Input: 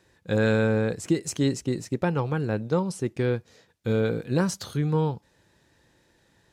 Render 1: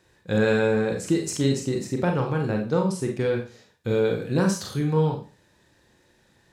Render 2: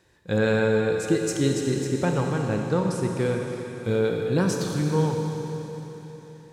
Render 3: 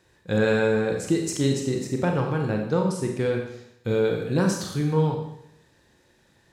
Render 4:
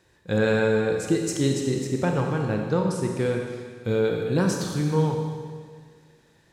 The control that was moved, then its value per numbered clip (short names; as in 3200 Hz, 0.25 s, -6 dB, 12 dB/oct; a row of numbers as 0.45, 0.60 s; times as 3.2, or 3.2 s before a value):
Schroeder reverb, RT60: 0.34, 3.9, 0.76, 1.8 s